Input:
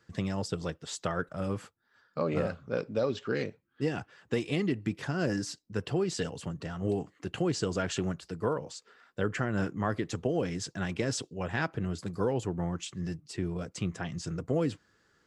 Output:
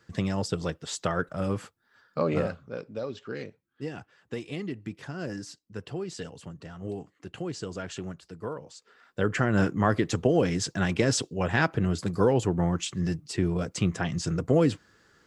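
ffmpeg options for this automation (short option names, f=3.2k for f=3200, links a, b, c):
-af "volume=16dB,afade=t=out:st=2.32:d=0.42:silence=0.354813,afade=t=in:st=8.72:d=0.83:silence=0.251189"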